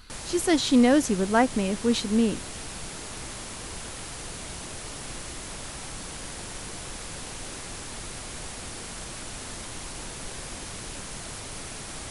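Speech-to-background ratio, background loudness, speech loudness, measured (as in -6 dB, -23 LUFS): 13.0 dB, -36.5 LUFS, -23.5 LUFS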